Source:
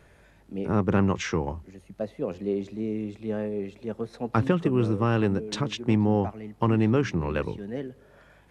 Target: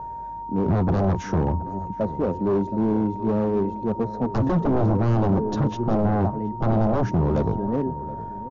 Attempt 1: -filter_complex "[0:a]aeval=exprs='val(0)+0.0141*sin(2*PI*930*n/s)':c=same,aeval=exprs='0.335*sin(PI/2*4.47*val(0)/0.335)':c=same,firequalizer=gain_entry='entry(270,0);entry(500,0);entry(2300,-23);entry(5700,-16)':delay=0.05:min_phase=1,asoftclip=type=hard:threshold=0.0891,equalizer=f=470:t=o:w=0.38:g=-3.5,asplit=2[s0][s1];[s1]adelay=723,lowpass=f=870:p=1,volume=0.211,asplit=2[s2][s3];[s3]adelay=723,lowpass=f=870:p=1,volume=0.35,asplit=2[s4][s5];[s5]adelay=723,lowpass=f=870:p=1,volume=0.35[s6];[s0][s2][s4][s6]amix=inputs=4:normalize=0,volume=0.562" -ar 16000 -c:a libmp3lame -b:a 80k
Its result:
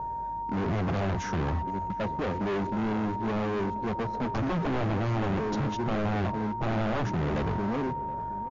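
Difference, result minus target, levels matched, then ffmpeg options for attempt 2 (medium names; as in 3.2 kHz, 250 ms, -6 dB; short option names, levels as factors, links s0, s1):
hard clipper: distortion +20 dB
-filter_complex "[0:a]aeval=exprs='val(0)+0.0141*sin(2*PI*930*n/s)':c=same,aeval=exprs='0.335*sin(PI/2*4.47*val(0)/0.335)':c=same,firequalizer=gain_entry='entry(270,0);entry(500,0);entry(2300,-23);entry(5700,-16)':delay=0.05:min_phase=1,asoftclip=type=hard:threshold=0.299,equalizer=f=470:t=o:w=0.38:g=-3.5,asplit=2[s0][s1];[s1]adelay=723,lowpass=f=870:p=1,volume=0.211,asplit=2[s2][s3];[s3]adelay=723,lowpass=f=870:p=1,volume=0.35,asplit=2[s4][s5];[s5]adelay=723,lowpass=f=870:p=1,volume=0.35[s6];[s0][s2][s4][s6]amix=inputs=4:normalize=0,volume=0.562" -ar 16000 -c:a libmp3lame -b:a 80k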